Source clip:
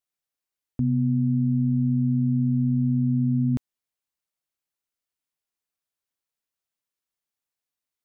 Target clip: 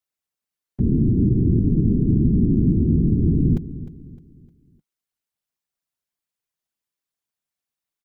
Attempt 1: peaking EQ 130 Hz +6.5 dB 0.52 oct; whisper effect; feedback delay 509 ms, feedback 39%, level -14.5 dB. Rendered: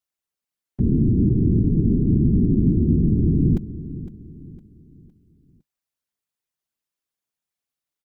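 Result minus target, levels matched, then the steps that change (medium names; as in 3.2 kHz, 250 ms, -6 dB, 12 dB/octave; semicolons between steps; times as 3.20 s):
echo 203 ms late
change: feedback delay 306 ms, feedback 39%, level -14.5 dB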